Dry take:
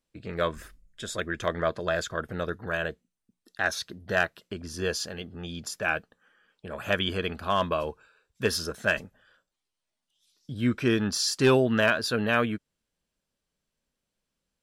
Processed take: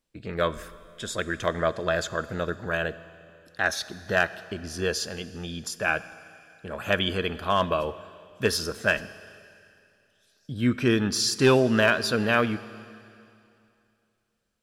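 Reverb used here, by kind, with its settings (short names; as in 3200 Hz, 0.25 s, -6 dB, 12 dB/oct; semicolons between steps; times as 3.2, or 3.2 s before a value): Schroeder reverb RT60 2.6 s, combs from 28 ms, DRR 15.5 dB; gain +2 dB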